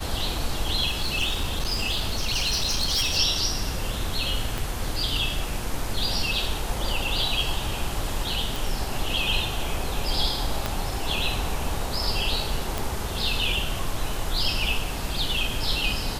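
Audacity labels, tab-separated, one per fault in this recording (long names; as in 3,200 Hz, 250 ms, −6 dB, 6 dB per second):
0.870000	3.180000	clipping −20 dBFS
4.580000	4.580000	click
8.560000	8.560000	click
10.660000	10.660000	click −10 dBFS
12.780000	12.780000	click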